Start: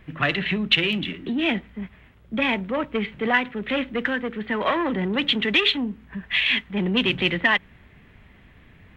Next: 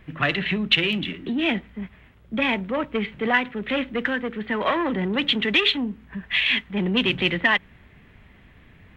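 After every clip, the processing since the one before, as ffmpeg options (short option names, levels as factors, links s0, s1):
-af anull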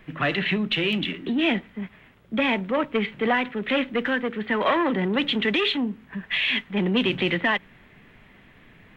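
-filter_complex "[0:a]equalizer=f=63:t=o:w=1.3:g=-14.5,acrossover=split=780[s0][s1];[s1]alimiter=limit=0.126:level=0:latency=1:release=21[s2];[s0][s2]amix=inputs=2:normalize=0,volume=1.26"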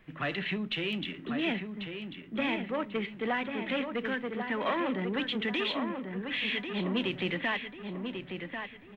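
-filter_complex "[0:a]asplit=2[s0][s1];[s1]adelay=1092,lowpass=f=2700:p=1,volume=0.501,asplit=2[s2][s3];[s3]adelay=1092,lowpass=f=2700:p=1,volume=0.42,asplit=2[s4][s5];[s5]adelay=1092,lowpass=f=2700:p=1,volume=0.42,asplit=2[s6][s7];[s7]adelay=1092,lowpass=f=2700:p=1,volume=0.42,asplit=2[s8][s9];[s9]adelay=1092,lowpass=f=2700:p=1,volume=0.42[s10];[s0][s2][s4][s6][s8][s10]amix=inputs=6:normalize=0,volume=0.355"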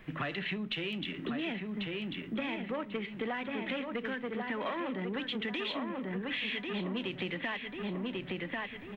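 -af "acompressor=threshold=0.01:ratio=6,volume=2.11"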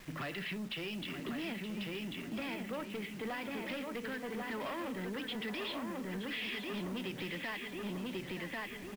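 -af "aresample=11025,asoftclip=type=tanh:threshold=0.02,aresample=44100,acrusher=bits=8:mix=0:aa=0.000001,aecho=1:1:922:0.299,volume=0.891"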